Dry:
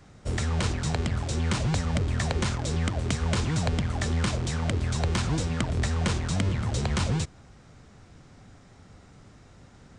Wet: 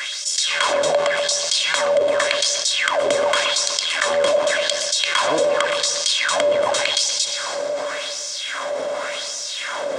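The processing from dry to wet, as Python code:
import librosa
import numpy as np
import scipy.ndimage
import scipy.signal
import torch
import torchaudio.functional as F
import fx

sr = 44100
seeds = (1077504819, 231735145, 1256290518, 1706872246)

p1 = scipy.signal.sosfilt(scipy.signal.butter(2, 94.0, 'highpass', fs=sr, output='sos'), x)
p2 = p1 + 0.51 * np.pad(p1, (int(1.9 * sr / 1000.0), 0))[:len(p1)]
p3 = np.clip(p2, -10.0 ** (-13.5 / 20.0), 10.0 ** (-13.5 / 20.0))
p4 = fx.filter_lfo_highpass(p3, sr, shape='sine', hz=0.88, low_hz=540.0, high_hz=5800.0, q=2.9)
p5 = fx.small_body(p4, sr, hz=(280.0, 580.0, 3300.0), ring_ms=100, db=16)
p6 = p5 + fx.echo_filtered(p5, sr, ms=123, feedback_pct=45, hz=1800.0, wet_db=-9.0, dry=0)
p7 = fx.rev_schroeder(p6, sr, rt60_s=1.9, comb_ms=38, drr_db=19.0)
p8 = fx.env_flatten(p7, sr, amount_pct=70)
y = F.gain(torch.from_numpy(p8), -1.0).numpy()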